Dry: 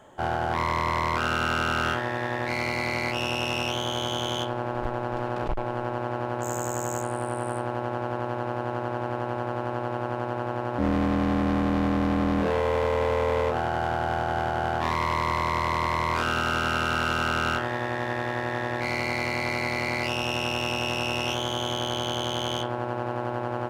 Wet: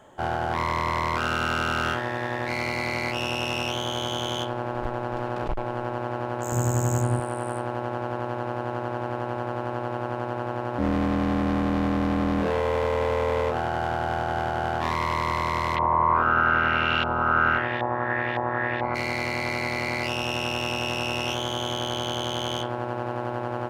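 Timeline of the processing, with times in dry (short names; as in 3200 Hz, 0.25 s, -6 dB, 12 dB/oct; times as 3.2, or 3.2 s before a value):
6.52–7.2 tone controls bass +14 dB, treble +2 dB
15.75–18.94 LFO low-pass saw up 0.57 Hz -> 2.7 Hz 840–3200 Hz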